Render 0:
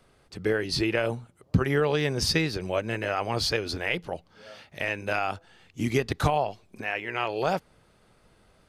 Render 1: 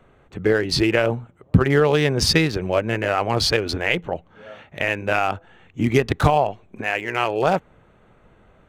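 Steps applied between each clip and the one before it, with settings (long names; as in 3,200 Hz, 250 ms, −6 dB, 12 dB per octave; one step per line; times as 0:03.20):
adaptive Wiener filter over 9 samples
level +7.5 dB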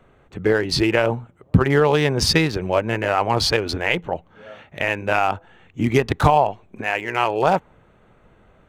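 dynamic equaliser 920 Hz, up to +6 dB, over −38 dBFS, Q 3.1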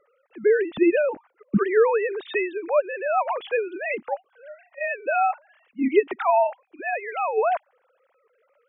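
three sine waves on the formant tracks
level −3.5 dB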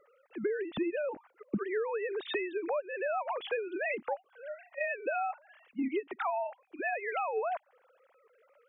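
downward compressor 12 to 1, threshold −30 dBFS, peak gain reduction 18.5 dB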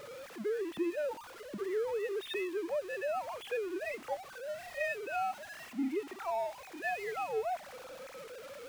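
converter with a step at zero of −37 dBFS
harmonic and percussive parts rebalanced percussive −10 dB
level −2.5 dB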